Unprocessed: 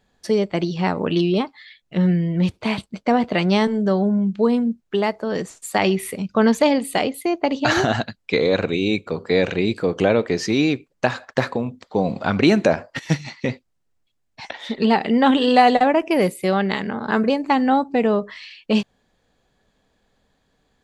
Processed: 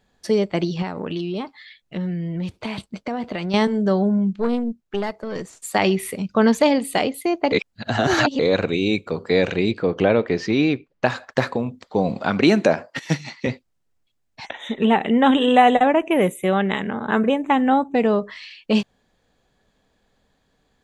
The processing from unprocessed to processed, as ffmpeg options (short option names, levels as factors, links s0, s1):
-filter_complex "[0:a]asettb=1/sr,asplit=3[s0][s1][s2];[s0]atrim=end=0.824[s3];[s1]atrim=start=0.82:end=3.54,asetpts=PTS-STARTPTS,afade=t=in:d=0.004:c=qsin,afade=t=out:st=2.716:d=0.004:c=qsin,acompressor=threshold=0.0631:ratio=4:attack=3.2:release=140:knee=1:detection=peak[s4];[s2]atrim=start=3.536[s5];[s3][s4]acrossfade=d=0.004:c1=hsin:c2=qsin[s6];[s6][s5]acrossfade=d=0.004:c1=qsin:c2=hsin,asettb=1/sr,asplit=3[s7][s8][s9];[s7]atrim=end=4.334[s10];[s8]atrim=start=4.33:end=5.53,asetpts=PTS-STARTPTS,afade=t=in:d=0.004:c=qsin,afade=t=out:st=1.196:d=0.004:c=qsin,aeval=exprs='(tanh(4.47*val(0)+0.75)-tanh(0.75))/4.47':c=same[s11];[s9]atrim=start=5.526[s12];[s10][s11]acrossfade=d=0.004:c1=hsin:c2=qsin[s13];[s13][s12]acrossfade=d=0.004:c1=qsin:c2=hsin,asettb=1/sr,asplit=3[s14][s15][s16];[s14]atrim=end=9.714[s17];[s15]atrim=start=9.71:end=11.06,asetpts=PTS-STARTPTS,afade=t=in:d=0.004:c=qsin,afade=t=out:st=1.346:d=0.004:c=qsin,lowpass=3800[s18];[s16]atrim=start=11.056[s19];[s17][s18]acrossfade=d=0.004:c1=hsin:c2=qsin[s20];[s20][s19]acrossfade=d=0.004:c1=qsin:c2=hsin,asettb=1/sr,asplit=3[s21][s22][s23];[s21]atrim=end=12.174[s24];[s22]atrim=start=12.17:end=13.47,asetpts=PTS-STARTPTS,afade=t=in:d=0.004:c=qsin,afade=t=out:st=1.296:d=0.004:c=qsin,highpass=140[s25];[s23]atrim=start=13.466[s26];[s24][s25]acrossfade=d=0.004:c1=hsin:c2=qsin[s27];[s27][s26]acrossfade=d=0.004:c1=qsin:c2=hsin,asettb=1/sr,asplit=3[s28][s29][s30];[s28]atrim=end=14.464[s31];[s29]atrim=start=14.46:end=17.95,asetpts=PTS-STARTPTS,afade=t=in:d=0.004:c=qsin,afade=t=out:st=3.486:d=0.004:c=qsin,asuperstop=centerf=4800:order=12:qfactor=2.3[s32];[s30]atrim=start=17.946[s33];[s31][s32]acrossfade=d=0.004:c1=hsin:c2=qsin[s34];[s34][s33]acrossfade=d=0.004:c1=qsin:c2=hsin,asplit=3[s35][s36][s37];[s35]atrim=end=7.522[s38];[s36]atrim=start=7.518:end=8.392,asetpts=PTS-STARTPTS,areverse[s39];[s37]atrim=start=8.388[s40];[s38][s39]acrossfade=d=0.004:c1=hsin:c2=hsin[s41];[s41][s40]acrossfade=d=0.004:c1=hsin:c2=hsin"